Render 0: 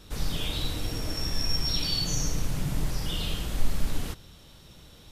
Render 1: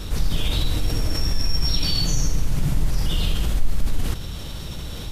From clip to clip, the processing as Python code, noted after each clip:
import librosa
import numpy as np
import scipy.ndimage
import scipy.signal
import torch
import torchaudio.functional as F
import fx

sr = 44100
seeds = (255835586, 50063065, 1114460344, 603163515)

y = fx.low_shelf(x, sr, hz=110.0, db=8.0)
y = fx.env_flatten(y, sr, amount_pct=50)
y = y * librosa.db_to_amplitude(-4.5)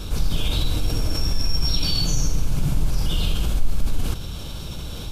y = fx.notch(x, sr, hz=1900.0, q=5.1)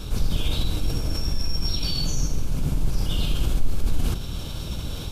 y = fx.octave_divider(x, sr, octaves=1, level_db=-1.0)
y = fx.rider(y, sr, range_db=3, speed_s=2.0)
y = y * librosa.db_to_amplitude(-3.0)